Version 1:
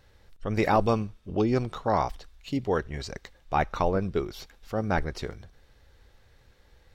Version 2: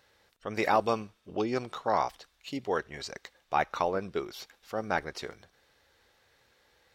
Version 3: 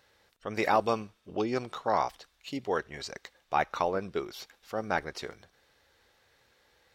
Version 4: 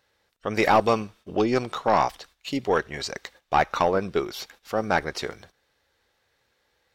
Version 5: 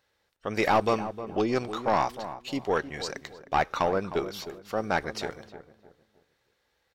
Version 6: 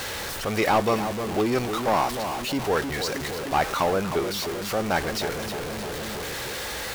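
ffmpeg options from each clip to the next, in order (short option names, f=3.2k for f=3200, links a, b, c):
-af "highpass=f=550:p=1"
-af anull
-af "aeval=exprs='(tanh(7.94*val(0)+0.2)-tanh(0.2))/7.94':c=same,agate=range=-12dB:threshold=-59dB:ratio=16:detection=peak,volume=8.5dB"
-filter_complex "[0:a]asplit=2[a][b];[b]aeval=exprs='clip(val(0),-1,0.119)':c=same,volume=-4dB[c];[a][c]amix=inputs=2:normalize=0,asplit=2[d][e];[e]adelay=309,lowpass=f=1.1k:p=1,volume=-11dB,asplit=2[f][g];[g]adelay=309,lowpass=f=1.1k:p=1,volume=0.35,asplit=2[h][i];[i]adelay=309,lowpass=f=1.1k:p=1,volume=0.35,asplit=2[j][k];[k]adelay=309,lowpass=f=1.1k:p=1,volume=0.35[l];[d][f][h][j][l]amix=inputs=5:normalize=0,volume=-8dB"
-af "aeval=exprs='val(0)+0.5*0.0501*sgn(val(0))':c=same"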